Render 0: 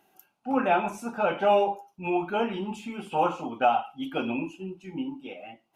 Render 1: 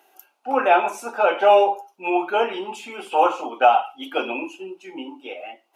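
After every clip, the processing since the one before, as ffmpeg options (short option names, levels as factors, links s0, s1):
-af "highpass=f=360:w=0.5412,highpass=f=360:w=1.3066,volume=2.37"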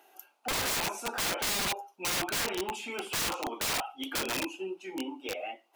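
-af "alimiter=limit=0.282:level=0:latency=1:release=455,aeval=exprs='(mod(15*val(0)+1,2)-1)/15':c=same,volume=0.794"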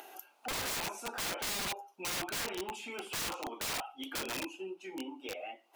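-af "acompressor=mode=upward:threshold=0.02:ratio=2.5,volume=0.531"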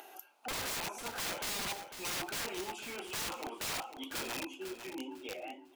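-af "aecho=1:1:500|1000|1500:0.316|0.0759|0.0182,volume=0.841"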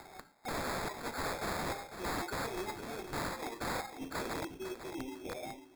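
-af "acrusher=samples=15:mix=1:aa=0.000001,volume=1.12"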